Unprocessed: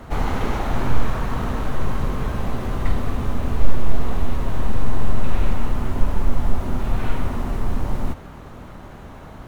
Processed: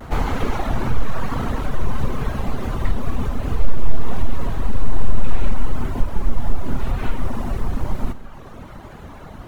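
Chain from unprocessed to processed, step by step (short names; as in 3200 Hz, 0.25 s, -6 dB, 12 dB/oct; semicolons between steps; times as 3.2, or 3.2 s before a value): reverb removal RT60 1 s; in parallel at +2 dB: compressor, threshold -19 dBFS, peak gain reduction 14 dB; on the sum: vibrato 0.92 Hz 51 cents; Schroeder reverb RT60 1.5 s, combs from 33 ms, DRR 12.5 dB; gain -3.5 dB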